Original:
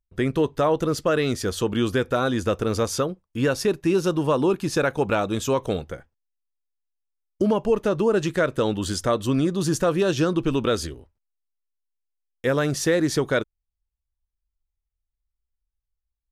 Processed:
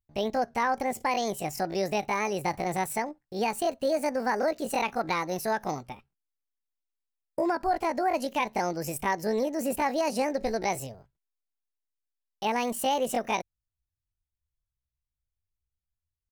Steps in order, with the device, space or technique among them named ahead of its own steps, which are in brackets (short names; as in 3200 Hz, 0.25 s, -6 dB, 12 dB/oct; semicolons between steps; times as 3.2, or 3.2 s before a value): chipmunk voice (pitch shift +8.5 st); gain -6 dB